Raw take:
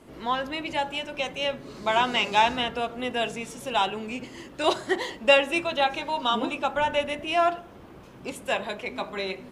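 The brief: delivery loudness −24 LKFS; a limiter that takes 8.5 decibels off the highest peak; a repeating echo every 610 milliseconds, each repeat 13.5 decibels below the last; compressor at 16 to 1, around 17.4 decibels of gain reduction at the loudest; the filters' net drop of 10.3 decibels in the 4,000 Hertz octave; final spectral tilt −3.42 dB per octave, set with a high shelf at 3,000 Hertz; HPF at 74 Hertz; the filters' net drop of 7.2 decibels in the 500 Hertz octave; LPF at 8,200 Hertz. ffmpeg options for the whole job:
ffmpeg -i in.wav -af "highpass=74,lowpass=8200,equalizer=frequency=500:width_type=o:gain=-9,highshelf=frequency=3000:gain=-8.5,equalizer=frequency=4000:width_type=o:gain=-9,acompressor=threshold=-37dB:ratio=16,alimiter=level_in=10.5dB:limit=-24dB:level=0:latency=1,volume=-10.5dB,aecho=1:1:610|1220:0.211|0.0444,volume=20.5dB" out.wav

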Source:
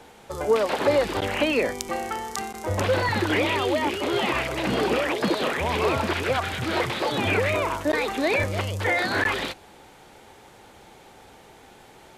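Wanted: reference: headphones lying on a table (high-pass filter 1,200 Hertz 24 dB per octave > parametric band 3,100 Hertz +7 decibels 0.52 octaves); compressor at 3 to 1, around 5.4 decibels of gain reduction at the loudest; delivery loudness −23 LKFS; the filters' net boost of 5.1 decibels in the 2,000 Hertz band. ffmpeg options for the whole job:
ffmpeg -i in.wav -af "equalizer=frequency=2000:width_type=o:gain=4.5,acompressor=threshold=-23dB:ratio=3,highpass=frequency=1200:width=0.5412,highpass=frequency=1200:width=1.3066,equalizer=frequency=3100:width_type=o:width=0.52:gain=7,volume=3.5dB" out.wav

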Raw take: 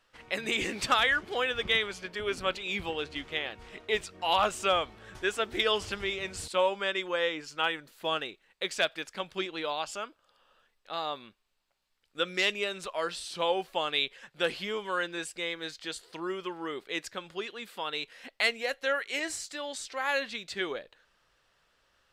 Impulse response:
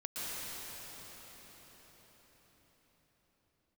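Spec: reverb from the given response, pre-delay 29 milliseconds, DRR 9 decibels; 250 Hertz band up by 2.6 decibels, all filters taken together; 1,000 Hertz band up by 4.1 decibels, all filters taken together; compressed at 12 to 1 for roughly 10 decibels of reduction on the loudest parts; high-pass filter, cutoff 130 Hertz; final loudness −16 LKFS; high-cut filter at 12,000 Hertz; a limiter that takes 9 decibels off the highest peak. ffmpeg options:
-filter_complex "[0:a]highpass=130,lowpass=12000,equalizer=frequency=250:width_type=o:gain=4,equalizer=frequency=1000:width_type=o:gain=5,acompressor=threshold=-27dB:ratio=12,alimiter=limit=-23.5dB:level=0:latency=1,asplit=2[link_01][link_02];[1:a]atrim=start_sample=2205,adelay=29[link_03];[link_02][link_03]afir=irnorm=-1:irlink=0,volume=-13dB[link_04];[link_01][link_04]amix=inputs=2:normalize=0,volume=19.5dB"

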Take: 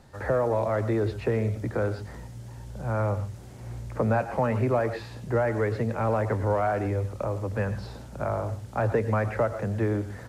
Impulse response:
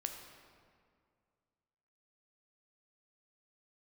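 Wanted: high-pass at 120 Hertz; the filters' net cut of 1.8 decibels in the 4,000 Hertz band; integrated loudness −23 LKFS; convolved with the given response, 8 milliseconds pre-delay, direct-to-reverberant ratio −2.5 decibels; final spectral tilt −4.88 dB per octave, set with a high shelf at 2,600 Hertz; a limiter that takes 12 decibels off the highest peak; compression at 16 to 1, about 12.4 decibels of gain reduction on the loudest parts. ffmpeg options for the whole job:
-filter_complex "[0:a]highpass=120,highshelf=frequency=2600:gain=7.5,equalizer=frequency=4000:width_type=o:gain=-9,acompressor=threshold=-32dB:ratio=16,alimiter=level_in=8dB:limit=-24dB:level=0:latency=1,volume=-8dB,asplit=2[link_01][link_02];[1:a]atrim=start_sample=2205,adelay=8[link_03];[link_02][link_03]afir=irnorm=-1:irlink=0,volume=3dB[link_04];[link_01][link_04]amix=inputs=2:normalize=0,volume=14dB"

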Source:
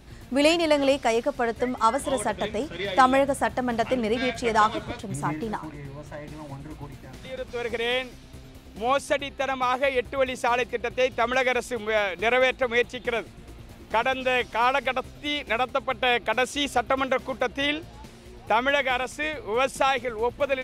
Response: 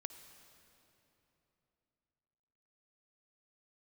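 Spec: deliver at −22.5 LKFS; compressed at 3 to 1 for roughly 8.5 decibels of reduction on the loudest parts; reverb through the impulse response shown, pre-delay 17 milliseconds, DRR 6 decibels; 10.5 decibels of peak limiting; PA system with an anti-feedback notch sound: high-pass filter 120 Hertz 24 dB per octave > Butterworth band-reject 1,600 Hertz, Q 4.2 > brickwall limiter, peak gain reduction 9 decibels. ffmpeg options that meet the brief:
-filter_complex "[0:a]acompressor=threshold=-24dB:ratio=3,alimiter=limit=-23dB:level=0:latency=1,asplit=2[link_01][link_02];[1:a]atrim=start_sample=2205,adelay=17[link_03];[link_02][link_03]afir=irnorm=-1:irlink=0,volume=-2.5dB[link_04];[link_01][link_04]amix=inputs=2:normalize=0,highpass=frequency=120:width=0.5412,highpass=frequency=120:width=1.3066,asuperstop=centerf=1600:order=8:qfactor=4.2,volume=14dB,alimiter=limit=-13dB:level=0:latency=1"

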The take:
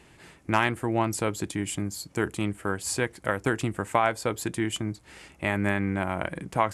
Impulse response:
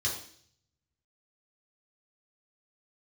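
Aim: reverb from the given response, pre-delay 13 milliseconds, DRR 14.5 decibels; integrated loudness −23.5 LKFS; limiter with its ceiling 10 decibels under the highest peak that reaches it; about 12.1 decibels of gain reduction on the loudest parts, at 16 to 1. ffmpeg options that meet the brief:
-filter_complex "[0:a]acompressor=threshold=-29dB:ratio=16,alimiter=level_in=1.5dB:limit=-24dB:level=0:latency=1,volume=-1.5dB,asplit=2[link_01][link_02];[1:a]atrim=start_sample=2205,adelay=13[link_03];[link_02][link_03]afir=irnorm=-1:irlink=0,volume=-20dB[link_04];[link_01][link_04]amix=inputs=2:normalize=0,volume=14dB"

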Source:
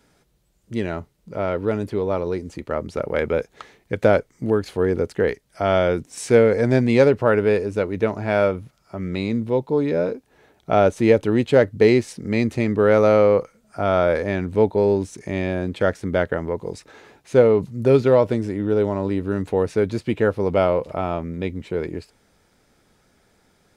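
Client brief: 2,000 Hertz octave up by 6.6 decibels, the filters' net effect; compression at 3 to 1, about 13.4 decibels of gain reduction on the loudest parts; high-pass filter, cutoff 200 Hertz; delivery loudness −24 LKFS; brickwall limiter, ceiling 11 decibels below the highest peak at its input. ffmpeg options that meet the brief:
ffmpeg -i in.wav -af "highpass=200,equalizer=frequency=2000:width_type=o:gain=8.5,acompressor=threshold=-28dB:ratio=3,volume=9.5dB,alimiter=limit=-11.5dB:level=0:latency=1" out.wav

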